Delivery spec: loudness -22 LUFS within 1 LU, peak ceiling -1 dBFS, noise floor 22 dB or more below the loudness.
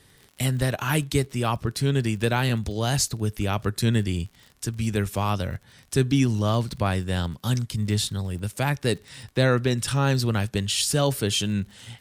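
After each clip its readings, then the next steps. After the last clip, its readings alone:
ticks 44/s; loudness -25.0 LUFS; peak -7.5 dBFS; loudness target -22.0 LUFS
-> de-click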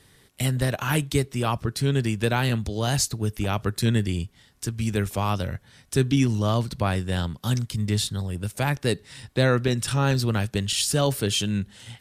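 ticks 0.083/s; loudness -25.0 LUFS; peak -7.5 dBFS; loudness target -22.0 LUFS
-> gain +3 dB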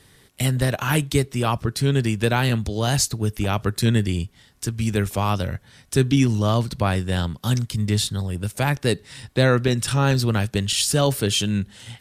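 loudness -22.0 LUFS; peak -4.5 dBFS; noise floor -55 dBFS

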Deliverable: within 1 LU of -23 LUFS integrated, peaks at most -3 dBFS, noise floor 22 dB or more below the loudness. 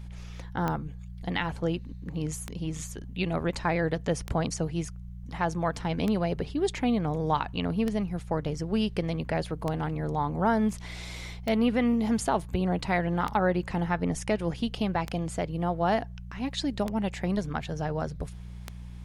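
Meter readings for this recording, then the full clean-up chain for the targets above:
clicks 11; hum 60 Hz; harmonics up to 180 Hz; hum level -38 dBFS; loudness -29.5 LUFS; peak -13.0 dBFS; loudness target -23.0 LUFS
-> de-click; de-hum 60 Hz, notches 3; gain +6.5 dB

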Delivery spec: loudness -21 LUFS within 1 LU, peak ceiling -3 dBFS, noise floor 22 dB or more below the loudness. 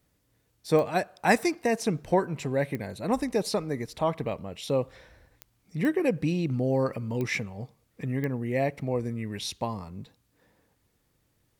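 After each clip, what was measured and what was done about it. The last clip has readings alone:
clicks 6; loudness -28.5 LUFS; peak -9.5 dBFS; loudness target -21.0 LUFS
-> de-click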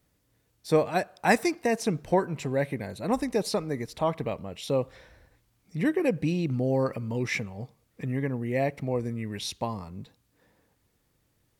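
clicks 0; loudness -28.5 LUFS; peak -9.5 dBFS; loudness target -21.0 LUFS
-> gain +7.5 dB; limiter -3 dBFS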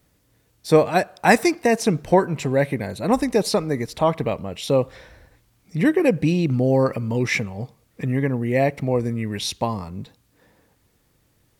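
loudness -21.5 LUFS; peak -3.0 dBFS; noise floor -64 dBFS

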